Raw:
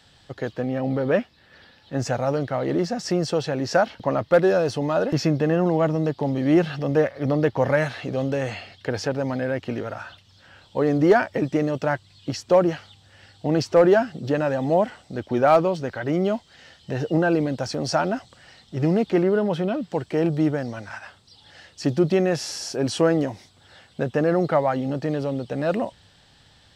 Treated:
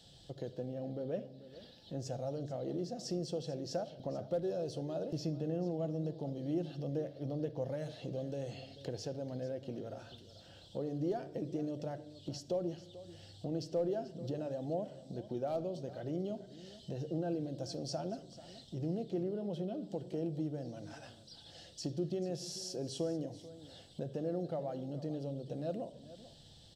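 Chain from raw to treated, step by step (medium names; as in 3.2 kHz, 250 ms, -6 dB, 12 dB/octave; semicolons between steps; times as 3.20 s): high-order bell 1.5 kHz -14.5 dB; compression 2:1, threshold -45 dBFS, peak gain reduction 18 dB; delay 438 ms -16 dB; simulated room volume 2000 m³, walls furnished, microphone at 0.78 m; trim -3 dB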